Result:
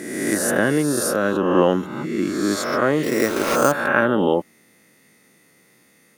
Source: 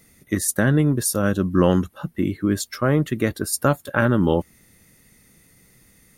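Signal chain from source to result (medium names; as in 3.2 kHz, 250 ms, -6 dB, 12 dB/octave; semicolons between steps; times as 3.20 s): reverse spectral sustain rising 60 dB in 1.28 s; high-pass 270 Hz 12 dB/octave; treble shelf 5 kHz -9.5 dB; 3.03–3.72 s: sample-rate reducer 7.6 kHz, jitter 0%; trim +1.5 dB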